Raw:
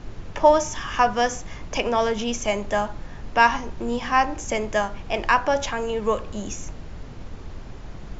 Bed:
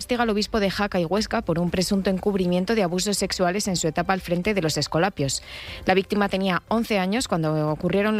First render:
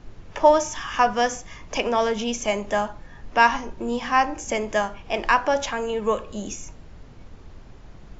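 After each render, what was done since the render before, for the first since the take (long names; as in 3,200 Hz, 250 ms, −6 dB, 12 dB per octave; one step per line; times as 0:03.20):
noise reduction from a noise print 7 dB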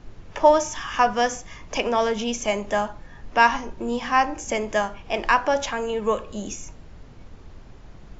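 no processing that can be heard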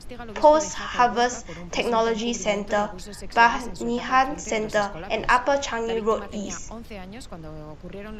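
mix in bed −16.5 dB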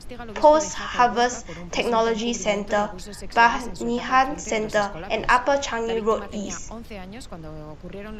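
level +1 dB
brickwall limiter −3 dBFS, peak gain reduction 1.5 dB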